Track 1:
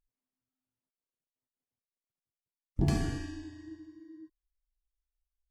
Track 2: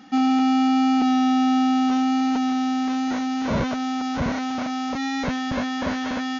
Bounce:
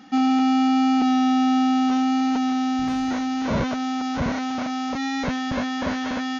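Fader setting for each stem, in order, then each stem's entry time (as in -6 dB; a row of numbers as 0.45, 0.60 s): -13.5, 0.0 dB; 0.00, 0.00 s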